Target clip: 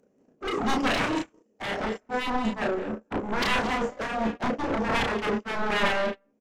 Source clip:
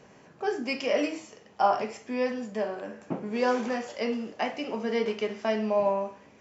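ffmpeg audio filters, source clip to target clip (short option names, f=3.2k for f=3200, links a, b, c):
-filter_complex "[0:a]equalizer=f=125:t=o:w=1:g=-5,equalizer=f=250:t=o:w=1:g=11,equalizer=f=500:t=o:w=1:g=8,equalizer=f=1k:t=o:w=1:g=-11,equalizer=f=2k:t=o:w=1:g=-6,equalizer=f=4k:t=o:w=1:g=-9,acompressor=mode=upward:threshold=-27dB:ratio=2.5,aeval=exprs='0.447*sin(PI/2*8.91*val(0)/0.447)':c=same,aecho=1:1:183.7|236.2:0.282|0.282,acontrast=74,agate=range=-59dB:threshold=-3dB:ratio=16:detection=peak,asplit=2[a][b];[b]adelay=32,volume=-3dB[c];[a][c]amix=inputs=2:normalize=0"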